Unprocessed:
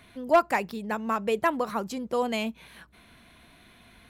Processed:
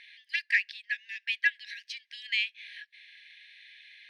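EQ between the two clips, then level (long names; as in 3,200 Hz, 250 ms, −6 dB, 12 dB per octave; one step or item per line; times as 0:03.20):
Savitzky-Golay smoothing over 15 samples
linear-phase brick-wall high-pass 1,600 Hz
high-frequency loss of the air 64 metres
+7.5 dB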